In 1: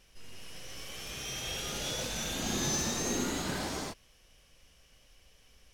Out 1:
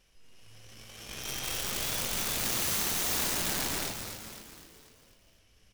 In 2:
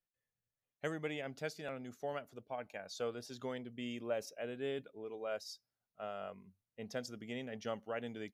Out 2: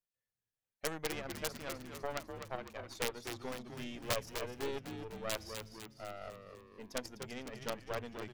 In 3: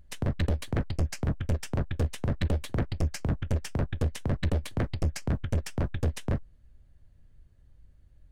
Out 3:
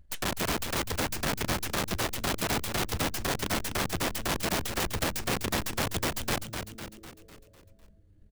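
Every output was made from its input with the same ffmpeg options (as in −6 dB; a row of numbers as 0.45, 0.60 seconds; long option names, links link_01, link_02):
-filter_complex "[0:a]aeval=exprs='0.112*(cos(1*acos(clip(val(0)/0.112,-1,1)))-cos(1*PI/2))+0.0447*(cos(2*acos(clip(val(0)/0.112,-1,1)))-cos(2*PI/2))+0.0355*(cos(4*acos(clip(val(0)/0.112,-1,1)))-cos(4*PI/2))+0.000708*(cos(5*acos(clip(val(0)/0.112,-1,1)))-cos(5*PI/2))+0.0126*(cos(7*acos(clip(val(0)/0.112,-1,1)))-cos(7*PI/2))':channel_layout=same,aeval=exprs='(mod(35.5*val(0)+1,2)-1)/35.5':channel_layout=same,asplit=7[link_01][link_02][link_03][link_04][link_05][link_06][link_07];[link_02]adelay=251,afreqshift=-110,volume=-7dB[link_08];[link_03]adelay=502,afreqshift=-220,volume=-12.5dB[link_09];[link_04]adelay=753,afreqshift=-330,volume=-18dB[link_10];[link_05]adelay=1004,afreqshift=-440,volume=-23.5dB[link_11];[link_06]adelay=1255,afreqshift=-550,volume=-29.1dB[link_12];[link_07]adelay=1506,afreqshift=-660,volume=-34.6dB[link_13];[link_01][link_08][link_09][link_10][link_11][link_12][link_13]amix=inputs=7:normalize=0,volume=8dB"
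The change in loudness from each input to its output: +4.0, +1.5, +1.0 LU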